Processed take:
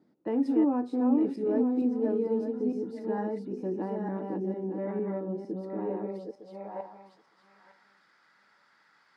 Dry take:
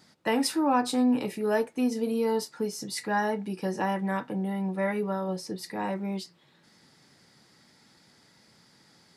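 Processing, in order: backward echo that repeats 454 ms, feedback 41%, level -2.5 dB; band-pass sweep 320 Hz -> 1.4 kHz, 5.76–7.61 s; trim +3 dB

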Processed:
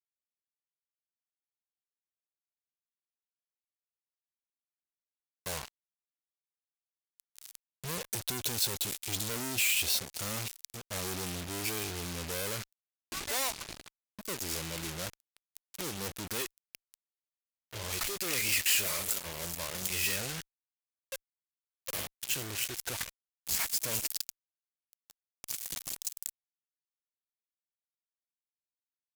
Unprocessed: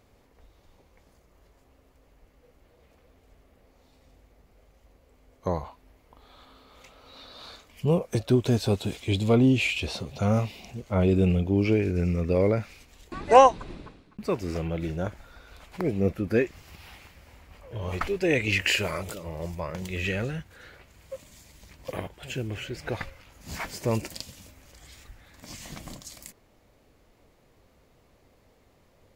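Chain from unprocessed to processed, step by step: fuzz box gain 41 dB, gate -37 dBFS; pre-emphasis filter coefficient 0.9; trim -6 dB

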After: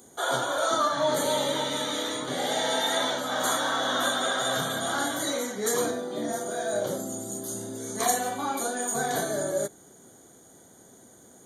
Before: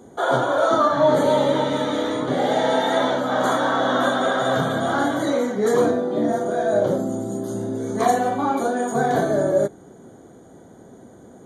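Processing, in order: pre-emphasis filter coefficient 0.9; trim +8.5 dB

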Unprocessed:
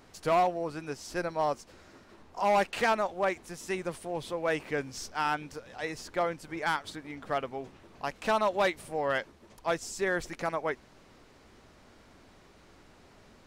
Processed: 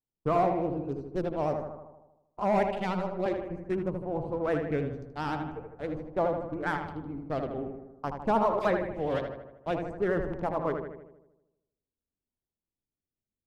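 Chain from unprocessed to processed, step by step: local Wiener filter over 25 samples; de-hum 82.43 Hz, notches 14; gate -45 dBFS, range -46 dB; tilt shelf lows +9 dB, about 630 Hz; 2.69–3.26 s: robot voice 189 Hz; 8.59–9.19 s: phase dispersion lows, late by 59 ms, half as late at 2.2 kHz; vibrato 9.6 Hz 85 cents; in parallel at -9.5 dB: saturation -38 dBFS, distortion -4 dB; on the sum: filtered feedback delay 78 ms, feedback 59%, low-pass 2.8 kHz, level -5.5 dB; sweeping bell 0.48 Hz 880–4300 Hz +8 dB; trim -1.5 dB

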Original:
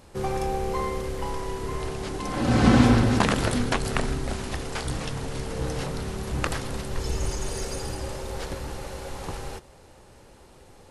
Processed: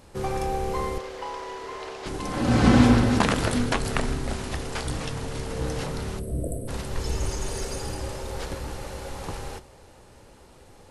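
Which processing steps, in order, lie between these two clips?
0.98–2.06 s: three-band isolator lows -23 dB, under 360 Hz, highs -16 dB, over 6.6 kHz; 6.19–6.68 s: spectral selection erased 720–7700 Hz; two-slope reverb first 0.4 s, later 3.7 s, from -17 dB, DRR 14 dB

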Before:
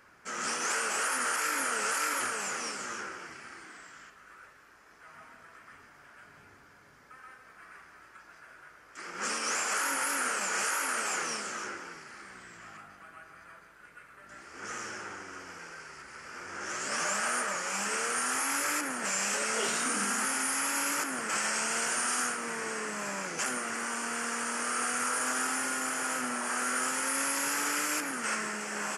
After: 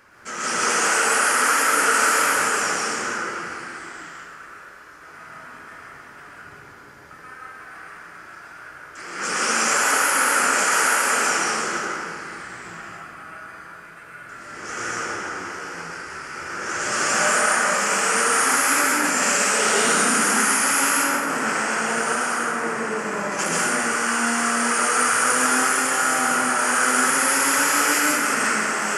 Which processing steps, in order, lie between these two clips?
20.90–23.32 s: treble shelf 2.4 kHz -10 dB; plate-style reverb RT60 1.7 s, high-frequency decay 0.6×, pre-delay 105 ms, DRR -5.5 dB; trim +5.5 dB

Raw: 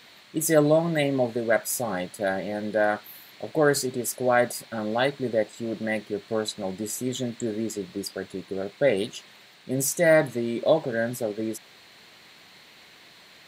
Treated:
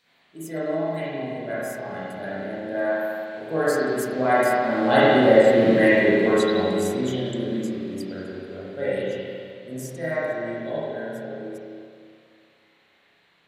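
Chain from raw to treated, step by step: Doppler pass-by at 5.62 s, 6 m/s, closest 3 m; spring tank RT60 2.2 s, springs 31/43 ms, chirp 65 ms, DRR -10 dB; trim +3.5 dB

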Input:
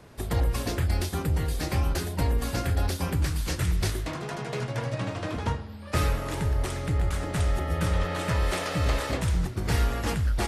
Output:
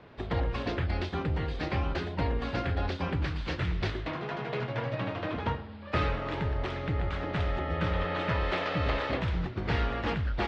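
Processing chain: low-pass 3.7 kHz 24 dB/octave; bass shelf 130 Hz -7.5 dB

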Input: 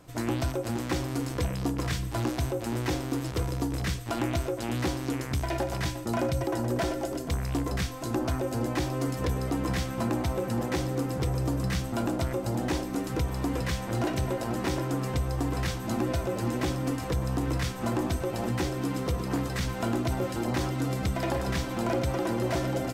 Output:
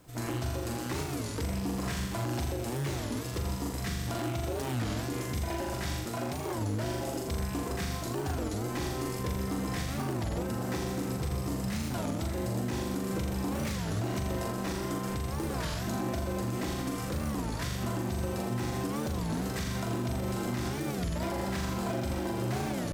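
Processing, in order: on a send: flutter echo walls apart 7.1 m, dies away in 0.91 s; on the sum: bit crusher 11-bit; treble shelf 5.1 kHz +5 dB; in parallel at -10.5 dB: decimation with a swept rate 33×, swing 160% 0.36 Hz; on the sum: peak limiter -18.5 dBFS, peak gain reduction 8.5 dB; 6.05–6.61 s: high-pass 160 Hz 6 dB/octave; warped record 33 1/3 rpm, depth 250 cents; trim -5.5 dB

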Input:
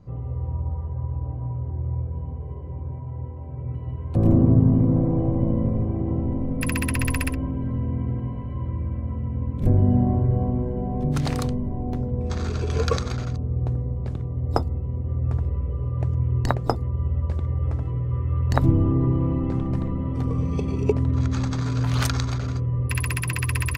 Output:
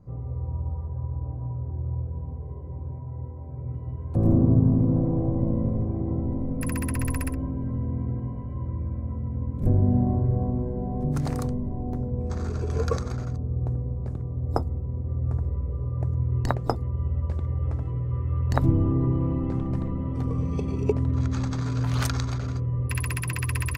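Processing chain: peaking EQ 3.2 kHz -11.5 dB 1.4 oct, from 16.32 s -2.5 dB; trim -2.5 dB

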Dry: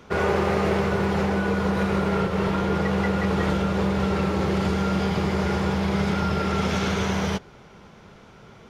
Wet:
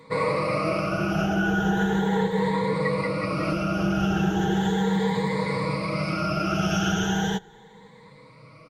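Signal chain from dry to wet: drifting ripple filter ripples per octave 0.98, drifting +0.37 Hz, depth 20 dB; comb 6.3 ms, depth 72%; trim -6.5 dB

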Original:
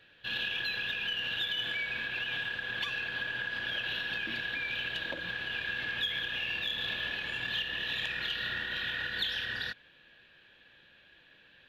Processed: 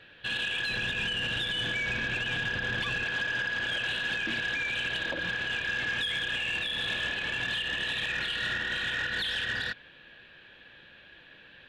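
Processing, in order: 0.69–3.04 s: bass shelf 370 Hz +10 dB; peak limiter -27 dBFS, peak gain reduction 6.5 dB; low-pass 3.8 kHz 6 dB/octave; saturation -31.5 dBFS, distortion -19 dB; trim +8 dB

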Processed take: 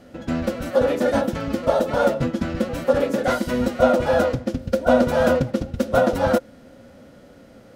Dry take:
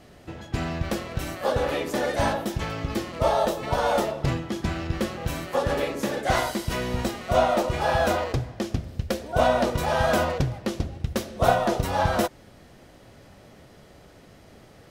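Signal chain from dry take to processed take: time stretch by phase-locked vocoder 0.52×; small resonant body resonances 250/520/1400 Hz, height 13 dB, ringing for 45 ms

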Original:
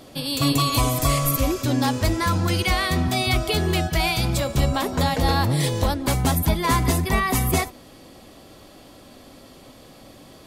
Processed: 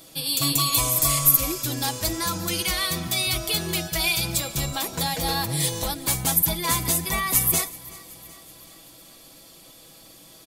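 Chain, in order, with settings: pre-emphasis filter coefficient 0.8; comb 6.1 ms, depth 52%; small resonant body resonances 2.4/3.5 kHz, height 10 dB, ringing for 85 ms; on a send: feedback delay 377 ms, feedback 59%, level -21 dB; on the sum: trim +5 dB

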